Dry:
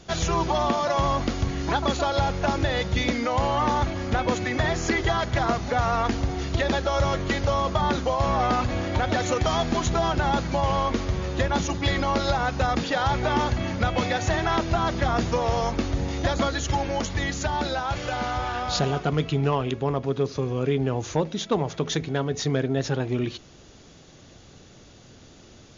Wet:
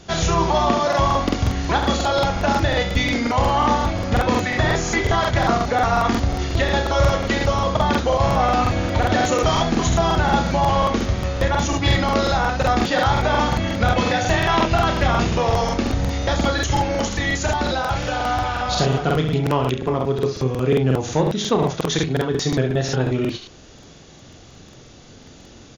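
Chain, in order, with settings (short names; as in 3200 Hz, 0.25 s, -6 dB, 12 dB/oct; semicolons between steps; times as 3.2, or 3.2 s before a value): 14.29–15.43 bell 2700 Hz +6 dB 0.5 oct; on a send: early reflections 31 ms -7 dB, 69 ms -8 dB; on the sum: crackling interface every 0.18 s, samples 2048, repeat, from 0.88; gain +4 dB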